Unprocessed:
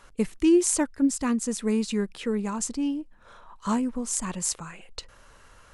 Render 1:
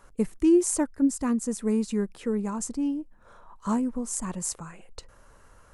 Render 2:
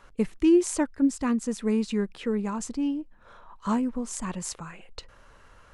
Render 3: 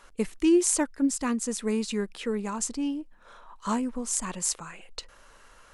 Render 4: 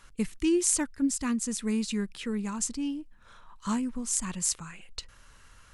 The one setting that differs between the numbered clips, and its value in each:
bell, frequency: 3300, 15000, 91, 570 Hz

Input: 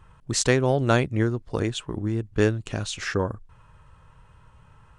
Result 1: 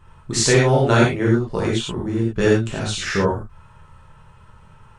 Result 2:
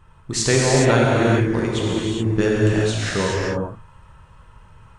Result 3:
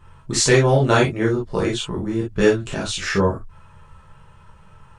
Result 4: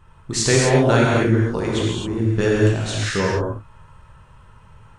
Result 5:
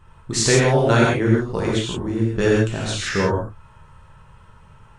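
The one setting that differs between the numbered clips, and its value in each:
non-linear reverb, gate: 130, 450, 80, 290, 190 ms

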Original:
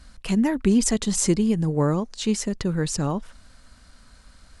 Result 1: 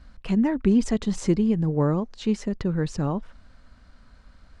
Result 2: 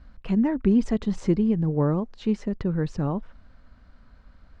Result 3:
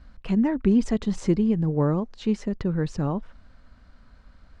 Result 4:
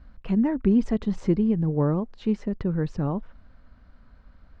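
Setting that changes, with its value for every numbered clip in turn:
tape spacing loss, at 10 kHz: 21, 37, 29, 46 dB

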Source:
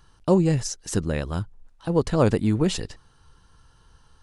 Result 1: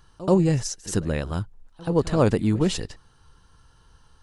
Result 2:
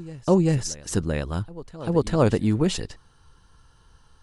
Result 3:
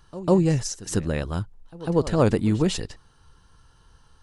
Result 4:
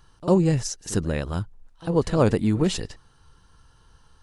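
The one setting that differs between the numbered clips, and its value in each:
reverse echo, time: 81, 391, 148, 51 ms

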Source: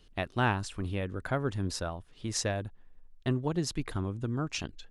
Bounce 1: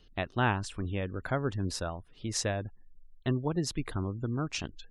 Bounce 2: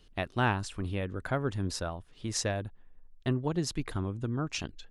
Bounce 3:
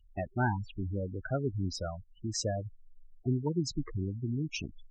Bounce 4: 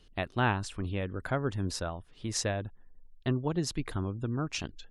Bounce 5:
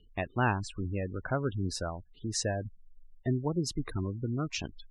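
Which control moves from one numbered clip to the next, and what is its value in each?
spectral gate, under each frame's peak: -35, -60, -10, -45, -20 dB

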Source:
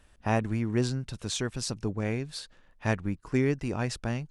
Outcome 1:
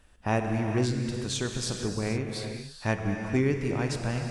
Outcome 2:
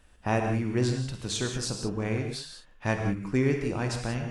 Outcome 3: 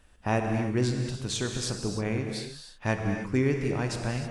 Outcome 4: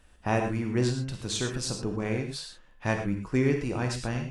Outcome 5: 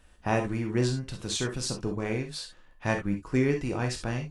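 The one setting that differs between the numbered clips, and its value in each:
non-linear reverb, gate: 500, 210, 340, 140, 90 ms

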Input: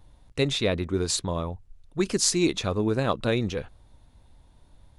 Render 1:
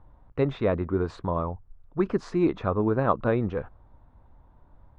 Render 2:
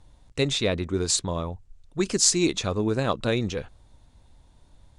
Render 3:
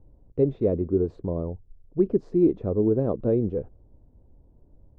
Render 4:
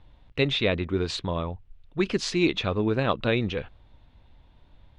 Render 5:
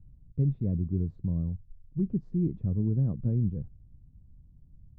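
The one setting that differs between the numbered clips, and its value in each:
synth low-pass, frequency: 1200, 7900, 440, 3000, 160 Hz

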